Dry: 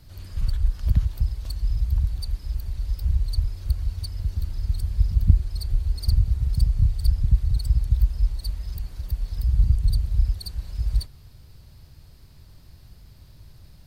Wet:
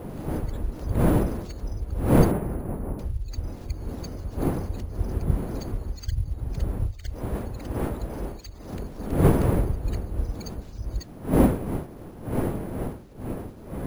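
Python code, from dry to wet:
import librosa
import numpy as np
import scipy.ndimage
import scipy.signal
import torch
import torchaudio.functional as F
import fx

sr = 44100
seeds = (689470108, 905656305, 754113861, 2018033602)

y = fx.spec_quant(x, sr, step_db=30)
y = fx.dmg_wind(y, sr, seeds[0], corner_hz=340.0, level_db=-20.0)
y = fx.lowpass(y, sr, hz=fx.line((2.31, 2400.0), (2.98, 1300.0)), slope=12, at=(2.31, 2.98), fade=0.02)
y = fx.low_shelf(y, sr, hz=210.0, db=-6.5, at=(6.91, 8.73))
y = np.repeat(y[::4], 4)[:len(y)]
y = y * 10.0 ** (-7.5 / 20.0)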